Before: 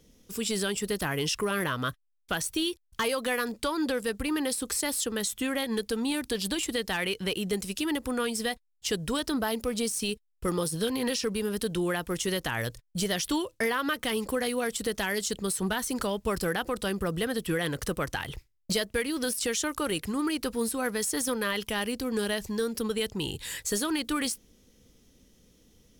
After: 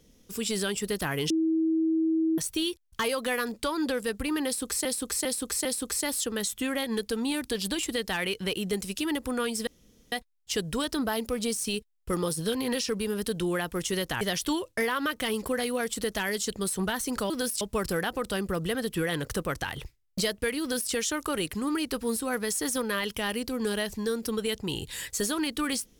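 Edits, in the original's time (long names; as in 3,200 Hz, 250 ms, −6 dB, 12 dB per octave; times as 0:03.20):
0:01.30–0:02.38: beep over 322 Hz −22 dBFS
0:04.45–0:04.85: repeat, 4 plays
0:08.47: splice in room tone 0.45 s
0:12.56–0:13.04: remove
0:19.13–0:19.44: duplicate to 0:16.13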